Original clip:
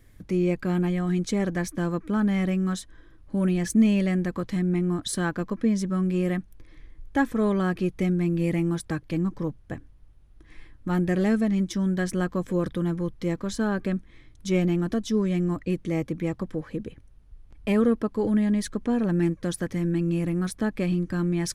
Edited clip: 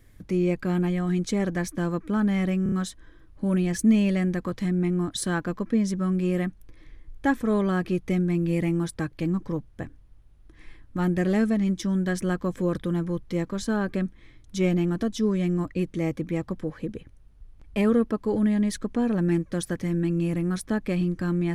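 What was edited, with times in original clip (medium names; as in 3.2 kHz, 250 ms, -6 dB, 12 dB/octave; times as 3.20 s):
2.63 s: stutter 0.03 s, 4 plays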